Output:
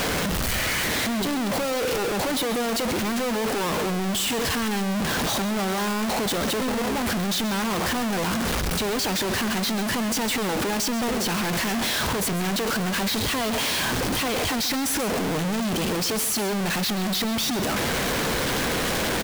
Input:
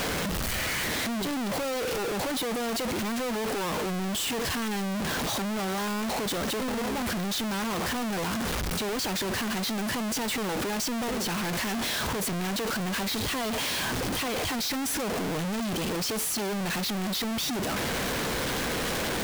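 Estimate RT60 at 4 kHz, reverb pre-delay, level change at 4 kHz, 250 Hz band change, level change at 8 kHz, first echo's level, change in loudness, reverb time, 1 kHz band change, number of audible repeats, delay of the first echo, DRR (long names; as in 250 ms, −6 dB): no reverb audible, no reverb audible, +4.5 dB, +4.5 dB, +4.5 dB, −13.0 dB, +4.5 dB, no reverb audible, +4.5 dB, 1, 133 ms, no reverb audible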